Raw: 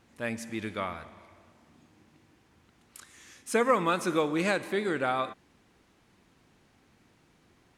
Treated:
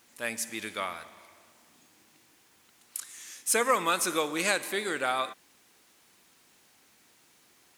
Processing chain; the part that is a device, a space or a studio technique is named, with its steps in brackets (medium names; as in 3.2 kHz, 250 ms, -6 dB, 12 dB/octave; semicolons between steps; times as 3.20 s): turntable without a phono preamp (RIAA curve recording; white noise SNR 37 dB)